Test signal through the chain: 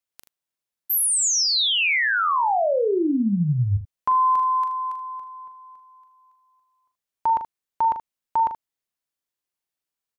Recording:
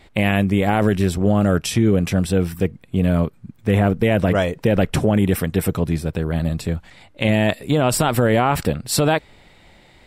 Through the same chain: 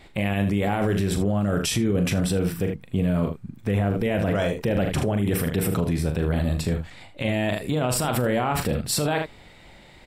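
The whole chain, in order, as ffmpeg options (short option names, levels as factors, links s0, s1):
-filter_complex "[0:a]asplit=2[s0][s1];[s1]aecho=0:1:40|78:0.376|0.237[s2];[s0][s2]amix=inputs=2:normalize=0,alimiter=limit=0.178:level=0:latency=1:release=36"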